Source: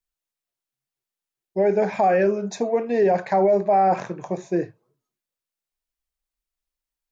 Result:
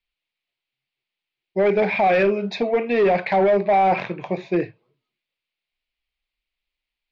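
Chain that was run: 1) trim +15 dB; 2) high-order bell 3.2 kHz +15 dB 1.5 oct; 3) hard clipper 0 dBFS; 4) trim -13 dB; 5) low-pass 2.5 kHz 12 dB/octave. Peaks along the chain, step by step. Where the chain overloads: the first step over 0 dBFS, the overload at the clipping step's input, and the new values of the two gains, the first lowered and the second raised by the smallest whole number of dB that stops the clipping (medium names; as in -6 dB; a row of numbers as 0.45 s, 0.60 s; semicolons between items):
+5.0 dBFS, +8.0 dBFS, 0.0 dBFS, -13.0 dBFS, -12.5 dBFS; step 1, 8.0 dB; step 1 +7 dB, step 4 -5 dB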